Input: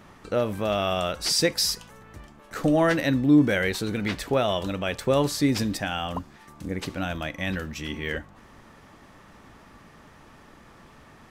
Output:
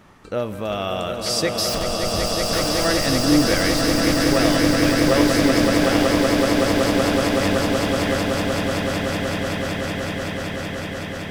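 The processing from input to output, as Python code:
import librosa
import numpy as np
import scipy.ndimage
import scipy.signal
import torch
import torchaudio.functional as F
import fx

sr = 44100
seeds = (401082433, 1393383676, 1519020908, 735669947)

y = fx.schmitt(x, sr, flips_db=-39.5, at=(1.69, 2.85))
y = fx.echo_swell(y, sr, ms=188, loudest=8, wet_db=-5.0)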